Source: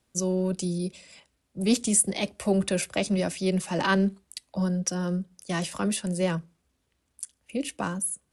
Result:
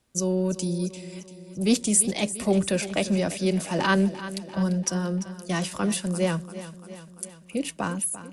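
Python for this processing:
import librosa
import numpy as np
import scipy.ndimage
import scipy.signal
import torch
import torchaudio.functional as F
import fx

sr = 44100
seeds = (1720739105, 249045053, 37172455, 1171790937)

p1 = fx.lowpass(x, sr, hz=7800.0, slope=12, at=(2.68, 3.29))
p2 = p1 + fx.echo_feedback(p1, sr, ms=343, feedback_pct=60, wet_db=-14.0, dry=0)
y = F.gain(torch.from_numpy(p2), 1.5).numpy()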